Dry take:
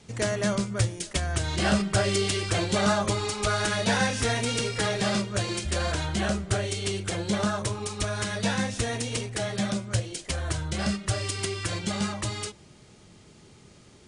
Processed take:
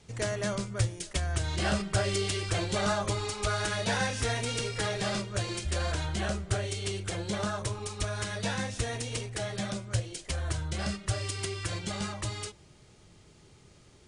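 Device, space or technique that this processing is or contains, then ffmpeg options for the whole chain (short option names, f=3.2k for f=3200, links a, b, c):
low shelf boost with a cut just above: -af "lowshelf=f=67:g=7.5,equalizer=f=220:t=o:w=0.58:g=-5,volume=-4.5dB"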